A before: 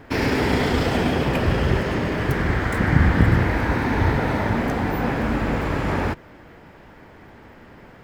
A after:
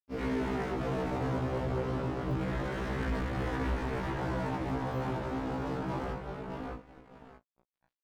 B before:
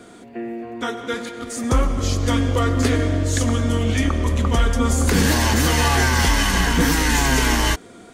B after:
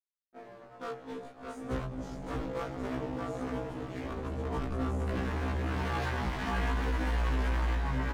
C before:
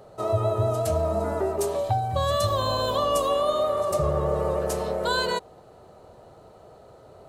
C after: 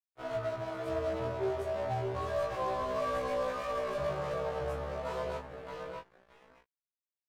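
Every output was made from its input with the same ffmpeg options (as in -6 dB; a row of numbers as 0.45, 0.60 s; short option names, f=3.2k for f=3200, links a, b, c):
-filter_complex "[0:a]afwtdn=0.0562,bandreject=f=50:t=h:w=6,bandreject=f=100:t=h:w=6,bandreject=f=150:t=h:w=6,bandreject=f=200:t=h:w=6,bandreject=f=250:t=h:w=6,bandreject=f=300:t=h:w=6,acrossover=split=250|810|2000[a][b][c][d];[d]acompressor=threshold=-45dB:ratio=6[e];[a][b][c][e]amix=inputs=4:normalize=0,asplit=2[f][g];[g]adelay=618,lowpass=f=4.2k:p=1,volume=-4dB,asplit=2[h][i];[i]adelay=618,lowpass=f=4.2k:p=1,volume=0.38,asplit=2[j][k];[k]adelay=618,lowpass=f=4.2k:p=1,volume=0.38,asplit=2[l][m];[m]adelay=618,lowpass=f=4.2k:p=1,volume=0.38,asplit=2[n][o];[o]adelay=618,lowpass=f=4.2k:p=1,volume=0.38[p];[f][h][j][l][n][p]amix=inputs=6:normalize=0,aeval=exprs='sgn(val(0))*max(abs(val(0))-0.0188,0)':c=same,flanger=delay=19.5:depth=3.7:speed=0.29,asoftclip=type=hard:threshold=-25dB,afftfilt=real='re*1.73*eq(mod(b,3),0)':imag='im*1.73*eq(mod(b,3),0)':win_size=2048:overlap=0.75,volume=-2.5dB"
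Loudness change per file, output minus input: -13.0, -15.5, -10.0 LU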